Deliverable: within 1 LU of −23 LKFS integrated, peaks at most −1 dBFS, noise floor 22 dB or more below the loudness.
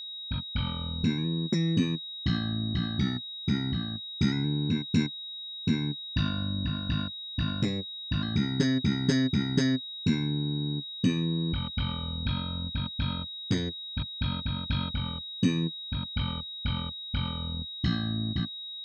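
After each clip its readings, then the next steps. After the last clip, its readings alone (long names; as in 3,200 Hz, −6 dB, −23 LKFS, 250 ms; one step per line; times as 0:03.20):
interfering tone 3,800 Hz; level of the tone −37 dBFS; integrated loudness −30.0 LKFS; sample peak −12.0 dBFS; target loudness −23.0 LKFS
→ notch filter 3,800 Hz, Q 30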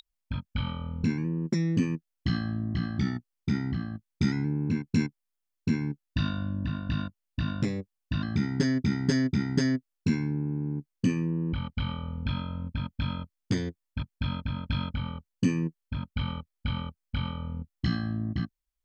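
interfering tone none found; integrated loudness −31.0 LKFS; sample peak −12.0 dBFS; target loudness −23.0 LKFS
→ level +8 dB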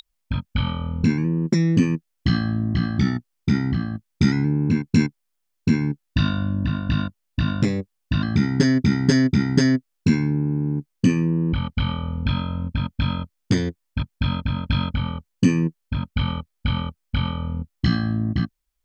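integrated loudness −23.0 LKFS; sample peak −4.0 dBFS; background noise floor −75 dBFS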